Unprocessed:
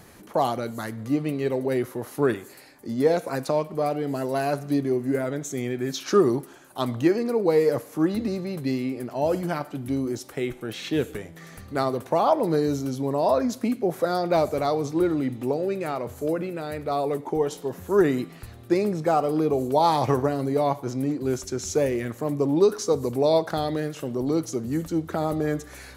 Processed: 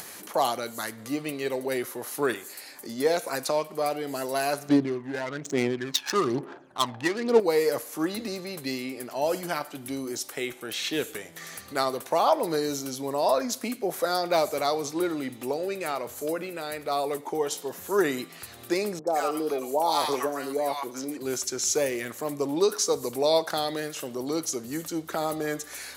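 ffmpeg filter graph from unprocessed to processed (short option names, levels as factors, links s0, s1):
-filter_complex "[0:a]asettb=1/sr,asplit=3[s0][s1][s2];[s0]atrim=end=4.694[s3];[s1]atrim=start=4.69:end=7.4,asetpts=PTS-STARTPTS,afade=t=in:d=0.004:c=qsin,afade=t=out:st=2.706:d=0.004:c=qsin,aphaser=in_gain=1:out_gain=1:delay=1.2:decay=0.7:speed=1.1:type=sinusoidal,adynamicsmooth=sensitivity=4:basefreq=900[s4];[s2]atrim=start=7.396[s5];[s3][s4]acrossfade=d=0.004:c1=hsin:c2=qsin[s6];[s6][s5]acrossfade=d=0.004:c1=qsin:c2=hsin,asettb=1/sr,asplit=3[s7][s8][s9];[s7]atrim=end=18.994[s10];[s8]atrim=start=18.99:end=21.17,asetpts=PTS-STARTPTS,afade=t=in:d=0.004:c=qsin,afade=t=out:st=2.176:d=0.004:c=qsin,highpass=240,acrossover=split=910|4400[s11][s12][s13];[s13]adelay=80[s14];[s12]adelay=110[s15];[s11][s15][s14]amix=inputs=3:normalize=0,atrim=end_sample=96138[s16];[s9]atrim=start=21.166[s17];[s10][s16]acrossfade=d=0.004:c1=hsin:c2=qsin[s18];[s18][s17]acrossfade=d=0.004:c1=qsin:c2=hsin,highpass=f=550:p=1,highshelf=f=2800:g=8.5,acompressor=mode=upward:threshold=0.0178:ratio=2.5"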